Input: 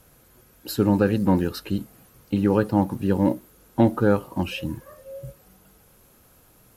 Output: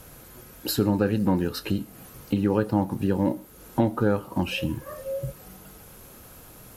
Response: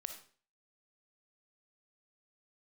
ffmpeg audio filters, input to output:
-filter_complex "[0:a]acompressor=threshold=0.0141:ratio=2,asplit=2[s0][s1];[1:a]atrim=start_sample=2205,adelay=28[s2];[s1][s2]afir=irnorm=-1:irlink=0,volume=0.237[s3];[s0][s3]amix=inputs=2:normalize=0,volume=2.66"

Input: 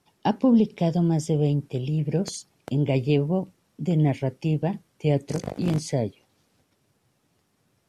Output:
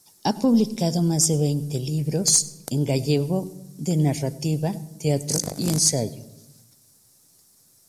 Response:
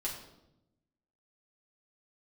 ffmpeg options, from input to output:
-filter_complex "[0:a]aexciter=amount=11.9:drive=1.1:freq=4300,aeval=exprs='0.668*(cos(1*acos(clip(val(0)/0.668,-1,1)))-cos(1*PI/2))+0.0596*(cos(2*acos(clip(val(0)/0.668,-1,1)))-cos(2*PI/2))+0.00422*(cos(8*acos(clip(val(0)/0.668,-1,1)))-cos(8*PI/2))':c=same,asplit=2[s0][s1];[1:a]atrim=start_sample=2205,lowshelf=f=330:g=10.5,adelay=94[s2];[s1][s2]afir=irnorm=-1:irlink=0,volume=0.0794[s3];[s0][s3]amix=inputs=2:normalize=0"

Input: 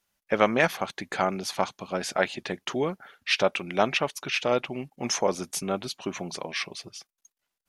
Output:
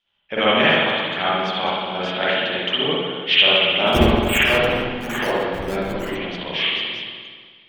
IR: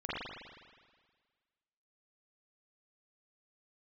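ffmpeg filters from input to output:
-filter_complex "[0:a]lowpass=f=3200:t=q:w=7.9,asplit=3[s0][s1][s2];[s0]afade=t=out:st=3.86:d=0.02[s3];[s1]acrusher=samples=12:mix=1:aa=0.000001:lfo=1:lforange=7.2:lforate=1.1,afade=t=in:st=3.86:d=0.02,afade=t=out:st=6.14:d=0.02[s4];[s2]afade=t=in:st=6.14:d=0.02[s5];[s3][s4][s5]amix=inputs=3:normalize=0[s6];[1:a]atrim=start_sample=2205,asetrate=40131,aresample=44100[s7];[s6][s7]afir=irnorm=-1:irlink=0,volume=0.891"

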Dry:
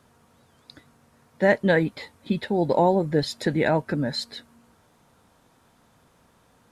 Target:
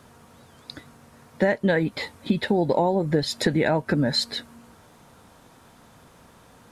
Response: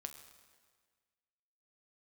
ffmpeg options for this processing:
-af "acompressor=threshold=0.0501:ratio=6,volume=2.51"

